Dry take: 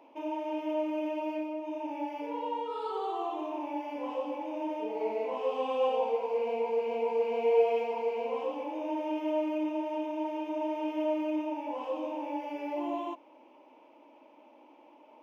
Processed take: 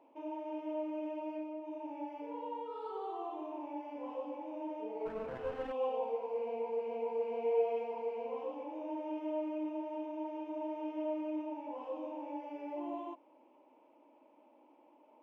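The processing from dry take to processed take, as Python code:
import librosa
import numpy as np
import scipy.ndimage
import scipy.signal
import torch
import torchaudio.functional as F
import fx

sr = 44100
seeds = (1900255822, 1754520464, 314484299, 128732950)

y = fx.lower_of_two(x, sr, delay_ms=0.37, at=(5.05, 5.71), fade=0.02)
y = fx.high_shelf(y, sr, hz=2100.0, db=-10.5)
y = y * 10.0 ** (-6.0 / 20.0)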